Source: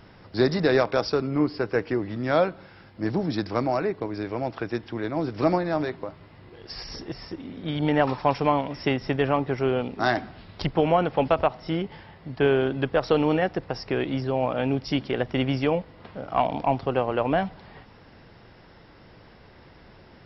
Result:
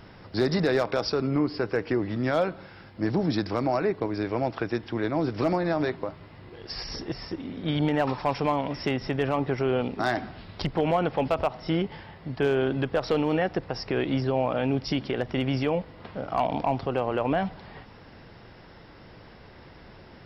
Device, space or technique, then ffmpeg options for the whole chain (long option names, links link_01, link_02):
clipper into limiter: -af "asoftclip=type=hard:threshold=-12dB,alimiter=limit=-17.5dB:level=0:latency=1:release=81,volume=2dB"